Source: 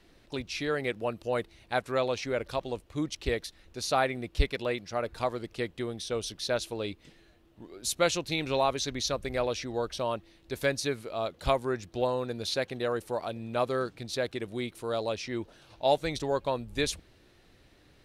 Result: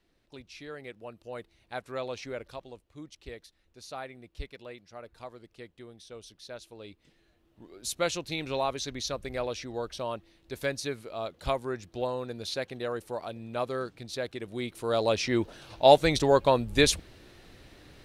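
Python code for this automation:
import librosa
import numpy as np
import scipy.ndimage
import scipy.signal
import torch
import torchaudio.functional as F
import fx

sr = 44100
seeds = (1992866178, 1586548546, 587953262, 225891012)

y = fx.gain(x, sr, db=fx.line((1.02, -12.0), (2.25, -5.5), (2.84, -13.5), (6.65, -13.5), (7.68, -3.0), (14.4, -3.0), (15.21, 7.5)))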